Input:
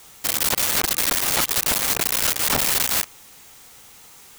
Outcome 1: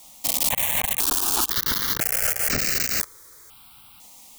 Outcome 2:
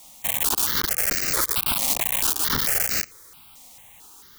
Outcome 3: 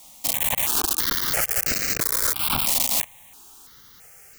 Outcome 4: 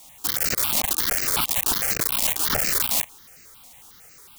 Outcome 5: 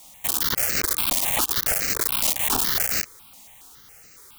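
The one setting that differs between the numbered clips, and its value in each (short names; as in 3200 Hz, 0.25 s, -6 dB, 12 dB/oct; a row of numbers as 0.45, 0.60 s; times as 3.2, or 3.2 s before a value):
step phaser, rate: 2, 4.5, 3, 11, 7.2 Hz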